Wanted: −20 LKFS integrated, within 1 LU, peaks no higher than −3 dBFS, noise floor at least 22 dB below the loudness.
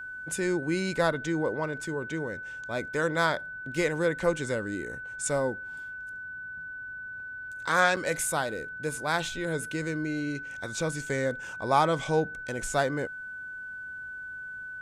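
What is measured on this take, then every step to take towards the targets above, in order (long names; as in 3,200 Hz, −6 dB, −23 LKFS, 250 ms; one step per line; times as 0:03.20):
number of dropouts 1; longest dropout 5.8 ms; interfering tone 1,500 Hz; level of the tone −37 dBFS; integrated loudness −30.5 LKFS; sample peak −9.5 dBFS; target loudness −20.0 LKFS
→ repair the gap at 0:07.96, 5.8 ms
notch filter 1,500 Hz, Q 30
level +10.5 dB
brickwall limiter −3 dBFS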